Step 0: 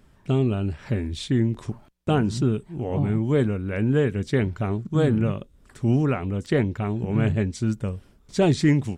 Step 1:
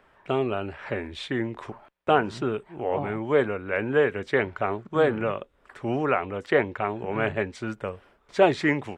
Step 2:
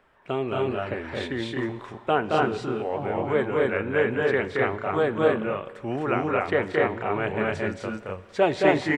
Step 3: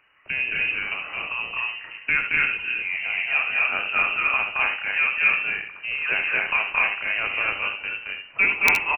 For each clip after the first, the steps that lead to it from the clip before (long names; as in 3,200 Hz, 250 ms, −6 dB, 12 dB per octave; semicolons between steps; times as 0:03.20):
three-way crossover with the lows and the highs turned down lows −21 dB, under 450 Hz, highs −19 dB, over 2,800 Hz; level +7.5 dB
on a send: loudspeakers that aren't time-aligned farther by 76 metres −3 dB, 87 metres −1 dB; on the sum: four-comb reverb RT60 2.1 s, combs from 33 ms, DRR 16.5 dB; level −2.5 dB
voice inversion scrambler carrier 2,900 Hz; wrap-around overflow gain 6 dB; ambience of single reflections 68 ms −9.5 dB, 78 ms −11.5 dB